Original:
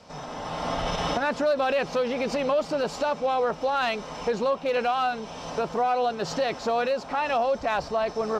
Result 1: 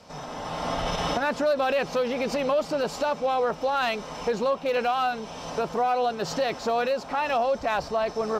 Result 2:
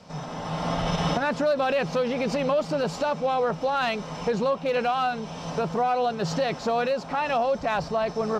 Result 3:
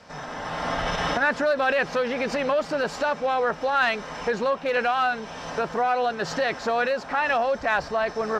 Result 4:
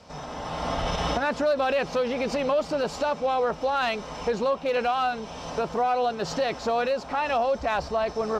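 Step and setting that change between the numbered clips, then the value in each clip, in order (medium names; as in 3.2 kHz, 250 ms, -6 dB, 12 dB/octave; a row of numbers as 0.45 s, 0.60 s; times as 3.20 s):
peaking EQ, frequency: 14 kHz, 160 Hz, 1.7 kHz, 64 Hz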